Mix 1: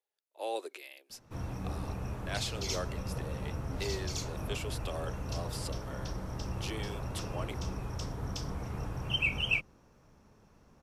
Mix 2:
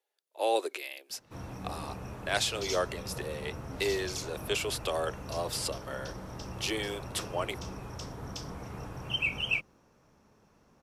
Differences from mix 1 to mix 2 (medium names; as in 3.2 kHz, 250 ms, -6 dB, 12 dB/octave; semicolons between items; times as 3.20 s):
speech +8.5 dB; master: add bass shelf 100 Hz -10 dB